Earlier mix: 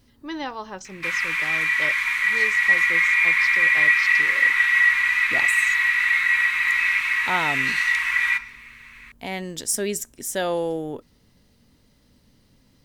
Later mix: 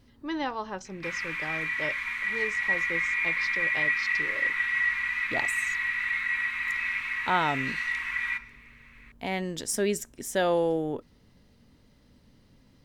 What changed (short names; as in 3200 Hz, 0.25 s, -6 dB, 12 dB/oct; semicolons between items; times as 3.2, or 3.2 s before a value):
background -8.0 dB; master: add high shelf 5100 Hz -9.5 dB